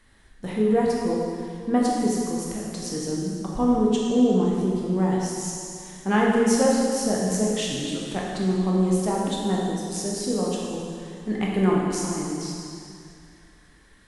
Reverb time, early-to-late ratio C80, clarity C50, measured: 2.4 s, 0.5 dB, −1.0 dB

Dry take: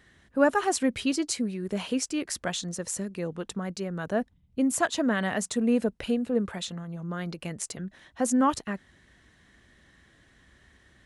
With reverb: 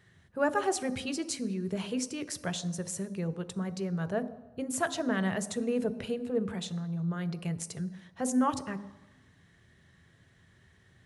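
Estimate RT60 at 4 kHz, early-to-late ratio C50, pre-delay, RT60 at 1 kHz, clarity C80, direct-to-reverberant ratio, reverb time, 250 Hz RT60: 1.0 s, 15.0 dB, 3 ms, 1.1 s, 16.5 dB, 11.0 dB, 1.0 s, 0.80 s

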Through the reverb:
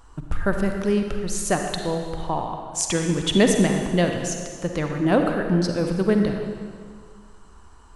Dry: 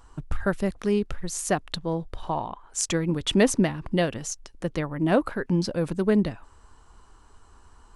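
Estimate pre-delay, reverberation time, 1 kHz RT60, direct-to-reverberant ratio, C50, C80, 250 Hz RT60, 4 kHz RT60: 39 ms, 1.9 s, 2.0 s, 3.5 dB, 4.0 dB, 5.5 dB, 1.9 s, 1.7 s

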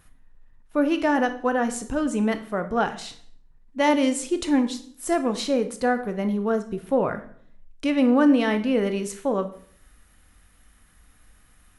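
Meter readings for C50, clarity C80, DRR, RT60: 13.0 dB, 16.5 dB, 8.5 dB, 0.55 s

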